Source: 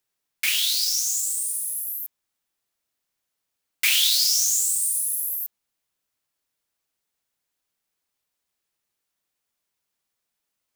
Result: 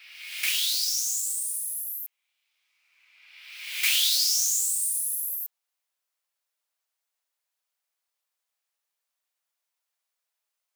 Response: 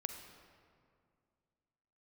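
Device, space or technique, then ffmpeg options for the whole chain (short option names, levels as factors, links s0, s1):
ghost voice: -filter_complex "[0:a]areverse[s0];[1:a]atrim=start_sample=2205[s1];[s0][s1]afir=irnorm=-1:irlink=0,areverse,highpass=f=540:w=0.5412,highpass=f=540:w=1.3066,volume=0.794"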